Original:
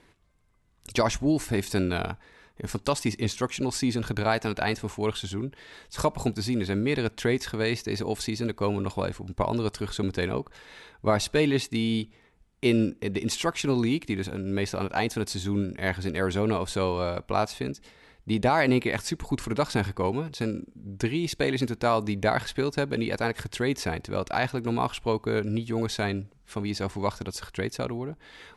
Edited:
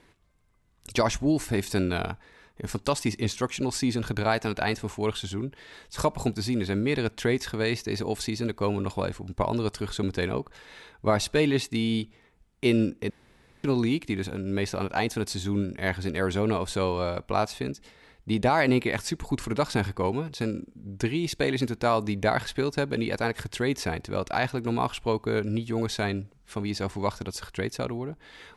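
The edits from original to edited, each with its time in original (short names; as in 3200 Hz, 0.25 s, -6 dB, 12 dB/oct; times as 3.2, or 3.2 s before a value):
13.1–13.64 room tone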